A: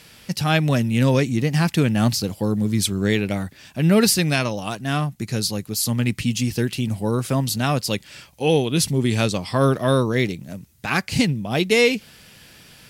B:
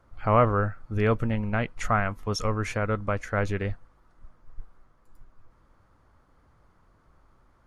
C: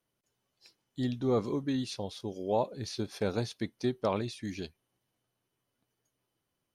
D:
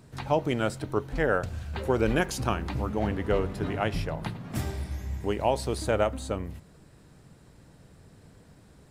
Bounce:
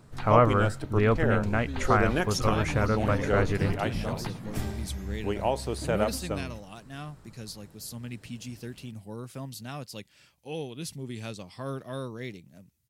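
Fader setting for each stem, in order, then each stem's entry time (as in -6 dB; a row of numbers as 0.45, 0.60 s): -17.5, 0.0, -8.0, -2.0 dB; 2.05, 0.00, 0.00, 0.00 s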